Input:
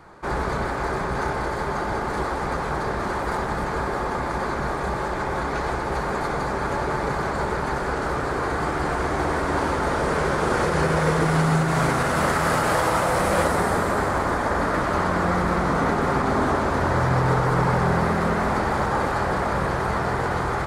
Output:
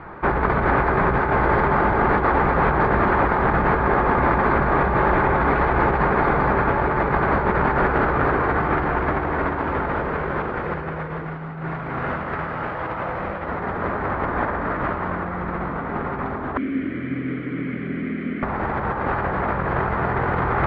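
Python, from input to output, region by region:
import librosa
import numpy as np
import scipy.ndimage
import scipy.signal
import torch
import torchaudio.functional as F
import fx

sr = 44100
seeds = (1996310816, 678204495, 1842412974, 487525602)

y = fx.chain(x, sr, fx.vowel_filter(vowel='i'),
    fx.notch(hz=3700.0, q=28.0), at=(16.57, 18.43))
y = scipy.signal.sosfilt(scipy.signal.butter(4, 2600.0, 'lowpass', fs=sr, output='sos'), y)
y = fx.peak_eq(y, sr, hz=550.0, db=-2.0, octaves=0.77)
y = fx.over_compress(y, sr, threshold_db=-27.0, ratio=-0.5)
y = y * 10.0 ** (6.5 / 20.0)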